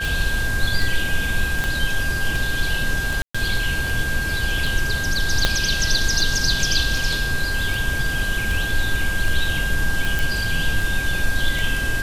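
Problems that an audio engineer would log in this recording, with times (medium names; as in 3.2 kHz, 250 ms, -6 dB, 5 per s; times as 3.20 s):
tick 78 rpm
whine 1.6 kHz -24 dBFS
1.64 s: pop -9 dBFS
3.22–3.35 s: dropout 125 ms
5.45 s: pop -2 dBFS
10.19 s: pop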